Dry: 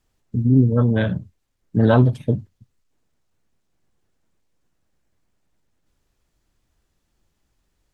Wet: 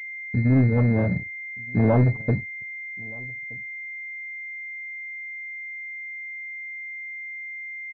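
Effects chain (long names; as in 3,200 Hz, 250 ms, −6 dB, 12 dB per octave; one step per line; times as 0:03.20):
leveller curve on the samples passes 2
slap from a distant wall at 210 metres, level −24 dB
switching amplifier with a slow clock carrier 2,100 Hz
level −8 dB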